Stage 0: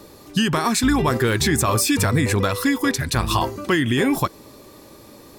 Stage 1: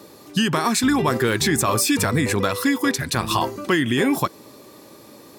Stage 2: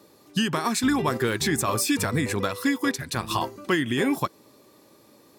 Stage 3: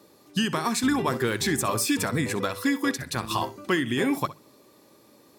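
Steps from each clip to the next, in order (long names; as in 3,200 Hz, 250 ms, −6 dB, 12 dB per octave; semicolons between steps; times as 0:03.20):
high-pass filter 130 Hz 12 dB per octave
expander for the loud parts 1.5 to 1, over −30 dBFS; level −3 dB
mains-hum notches 50/100/150 Hz; flutter between parallel walls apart 11 metres, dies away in 0.23 s; level −1 dB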